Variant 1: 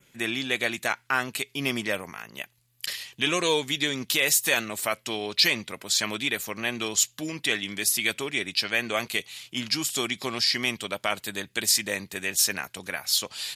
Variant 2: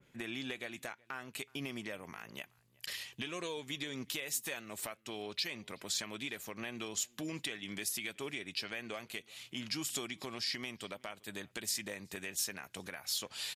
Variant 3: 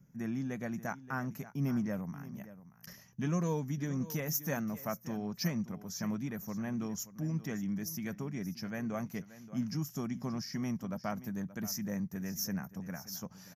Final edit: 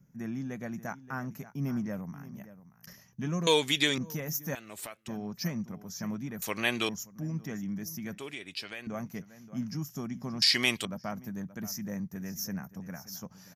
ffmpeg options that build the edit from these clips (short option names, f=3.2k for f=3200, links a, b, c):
-filter_complex "[0:a]asplit=3[a][b][c];[1:a]asplit=2[d][e];[2:a]asplit=6[f][g][h][i][j][k];[f]atrim=end=3.472[l];[a]atrim=start=3.468:end=3.982[m];[g]atrim=start=3.978:end=4.552[n];[d]atrim=start=4.548:end=5.082[o];[h]atrim=start=5.078:end=6.422[p];[b]atrim=start=6.418:end=6.892[q];[i]atrim=start=6.888:end=8.182[r];[e]atrim=start=8.178:end=8.872[s];[j]atrim=start=8.868:end=10.422[t];[c]atrim=start=10.418:end=10.852[u];[k]atrim=start=10.848[v];[l][m]acrossfade=d=0.004:c1=hsin:c2=hsin[w];[w][n]acrossfade=d=0.004:c1=hsin:c2=hsin[x];[x][o]acrossfade=d=0.004:c1=hsin:c2=hsin[y];[y][p]acrossfade=d=0.004:c1=hsin:c2=hsin[z];[z][q]acrossfade=d=0.004:c1=hsin:c2=hsin[aa];[aa][r]acrossfade=d=0.004:c1=hsin:c2=hsin[ab];[ab][s]acrossfade=d=0.004:c1=hsin:c2=hsin[ac];[ac][t]acrossfade=d=0.004:c1=hsin:c2=hsin[ad];[ad][u]acrossfade=d=0.004:c1=hsin:c2=hsin[ae];[ae][v]acrossfade=d=0.004:c1=hsin:c2=hsin"